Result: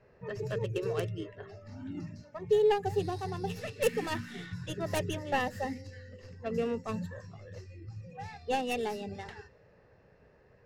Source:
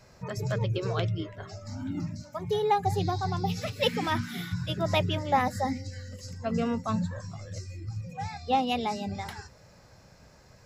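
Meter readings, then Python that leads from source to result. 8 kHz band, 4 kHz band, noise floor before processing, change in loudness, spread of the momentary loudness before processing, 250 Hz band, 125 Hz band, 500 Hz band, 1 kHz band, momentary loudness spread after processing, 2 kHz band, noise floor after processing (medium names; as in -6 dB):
-2.5 dB, -8.5 dB, -56 dBFS, -3.5 dB, 14 LU, -6.5 dB, -8.0 dB, +0.5 dB, -7.5 dB, 17 LU, -3.0 dB, -62 dBFS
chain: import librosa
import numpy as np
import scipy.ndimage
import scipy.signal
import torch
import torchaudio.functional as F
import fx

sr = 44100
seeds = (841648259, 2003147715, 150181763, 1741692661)

y = fx.tracing_dist(x, sr, depth_ms=0.31)
y = fx.env_lowpass(y, sr, base_hz=2100.0, full_db=-26.0)
y = fx.small_body(y, sr, hz=(430.0, 1800.0, 2700.0), ring_ms=25, db=12)
y = y * 10.0 ** (-8.5 / 20.0)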